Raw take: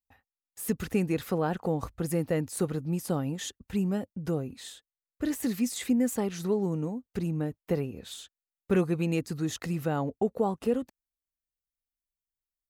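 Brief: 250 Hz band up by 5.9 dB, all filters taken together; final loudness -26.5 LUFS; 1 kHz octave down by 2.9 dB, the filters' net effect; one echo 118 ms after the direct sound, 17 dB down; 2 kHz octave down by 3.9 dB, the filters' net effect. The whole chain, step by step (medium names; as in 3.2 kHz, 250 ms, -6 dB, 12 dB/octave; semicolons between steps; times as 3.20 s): peaking EQ 250 Hz +8 dB; peaking EQ 1 kHz -4 dB; peaking EQ 2 kHz -4 dB; delay 118 ms -17 dB; trim -0.5 dB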